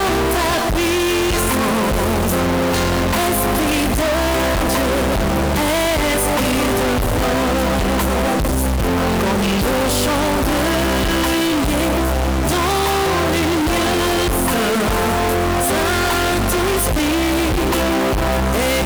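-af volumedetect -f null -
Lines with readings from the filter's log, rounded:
mean_volume: -16.8 dB
max_volume: -12.1 dB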